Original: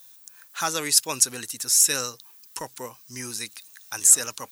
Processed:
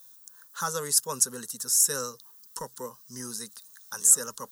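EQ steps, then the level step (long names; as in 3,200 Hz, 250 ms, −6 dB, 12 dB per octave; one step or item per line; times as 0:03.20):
dynamic equaliser 4,100 Hz, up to −6 dB, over −37 dBFS, Q 1.6
low-shelf EQ 490 Hz +4.5 dB
phaser with its sweep stopped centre 470 Hz, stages 8
−2.0 dB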